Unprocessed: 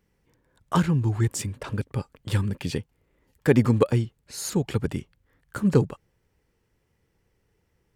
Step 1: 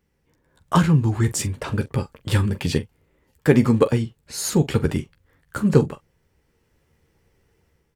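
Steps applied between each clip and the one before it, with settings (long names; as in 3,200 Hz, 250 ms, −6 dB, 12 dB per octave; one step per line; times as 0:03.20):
automatic gain control gain up to 7 dB
on a send: ambience of single reflections 13 ms −8.5 dB, 44 ms −15 dB
on the sum: level −1 dB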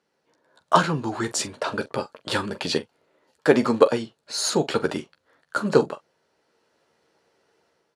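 loudspeaker in its box 320–10,000 Hz, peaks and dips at 640 Hz +8 dB, 950 Hz +3 dB, 1,400 Hz +5 dB, 2,100 Hz −4 dB, 4,200 Hz +7 dB, 8,200 Hz −5 dB
level +1 dB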